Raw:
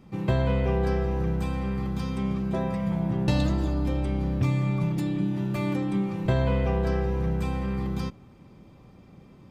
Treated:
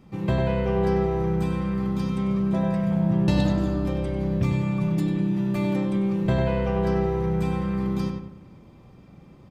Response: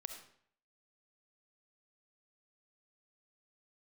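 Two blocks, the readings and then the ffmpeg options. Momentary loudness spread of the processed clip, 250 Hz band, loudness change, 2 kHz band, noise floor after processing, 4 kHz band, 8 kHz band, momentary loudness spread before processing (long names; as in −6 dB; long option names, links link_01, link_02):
4 LU, +4.0 dB, +2.5 dB, +1.0 dB, −50 dBFS, +0.5 dB, can't be measured, 5 LU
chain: -filter_complex "[0:a]asplit=2[link_01][link_02];[link_02]adelay=97,lowpass=frequency=2500:poles=1,volume=-4dB,asplit=2[link_03][link_04];[link_04]adelay=97,lowpass=frequency=2500:poles=1,volume=0.44,asplit=2[link_05][link_06];[link_06]adelay=97,lowpass=frequency=2500:poles=1,volume=0.44,asplit=2[link_07][link_08];[link_08]adelay=97,lowpass=frequency=2500:poles=1,volume=0.44,asplit=2[link_09][link_10];[link_10]adelay=97,lowpass=frequency=2500:poles=1,volume=0.44,asplit=2[link_11][link_12];[link_12]adelay=97,lowpass=frequency=2500:poles=1,volume=0.44[link_13];[link_01][link_03][link_05][link_07][link_09][link_11][link_13]amix=inputs=7:normalize=0"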